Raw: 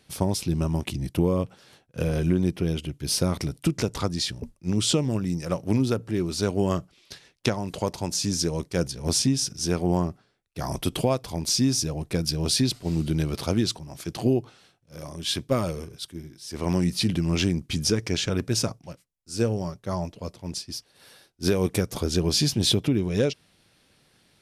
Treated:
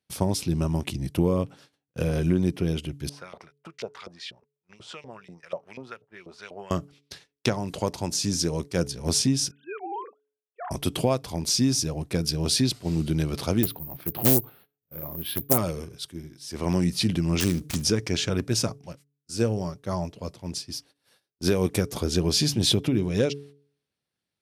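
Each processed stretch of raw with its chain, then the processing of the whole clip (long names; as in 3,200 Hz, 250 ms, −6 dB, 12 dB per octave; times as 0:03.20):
0:03.09–0:06.71: parametric band 290 Hz −14 dB 0.21 octaves + auto-filter band-pass saw up 4.1 Hz 520–3,400 Hz
0:09.51–0:10.71: three sine waves on the formant tracks + four-pole ladder high-pass 480 Hz, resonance 30%
0:13.63–0:15.58: high-frequency loss of the air 340 metres + bad sample-rate conversion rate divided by 3×, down filtered, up zero stuff + highs frequency-modulated by the lows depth 0.69 ms
0:17.40–0:17.82: gap after every zero crossing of 0.15 ms + high-shelf EQ 4,300 Hz +11 dB + hum removal 152.9 Hz, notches 4
whole clip: high-pass filter 48 Hz; noise gate −49 dBFS, range −24 dB; hum removal 142.3 Hz, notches 3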